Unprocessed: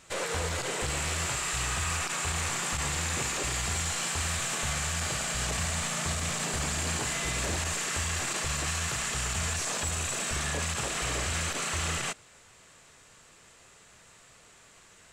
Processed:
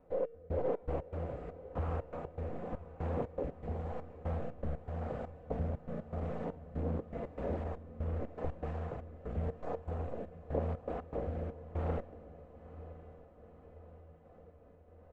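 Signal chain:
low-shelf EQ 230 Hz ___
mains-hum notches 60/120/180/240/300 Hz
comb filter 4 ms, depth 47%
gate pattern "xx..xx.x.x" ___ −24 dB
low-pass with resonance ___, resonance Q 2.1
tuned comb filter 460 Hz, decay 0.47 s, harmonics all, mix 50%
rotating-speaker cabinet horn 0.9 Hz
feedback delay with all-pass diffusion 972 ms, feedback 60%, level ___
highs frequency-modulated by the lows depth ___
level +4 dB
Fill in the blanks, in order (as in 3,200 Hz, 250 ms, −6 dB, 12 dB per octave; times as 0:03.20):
+2.5 dB, 120 BPM, 590 Hz, −15 dB, 0.5 ms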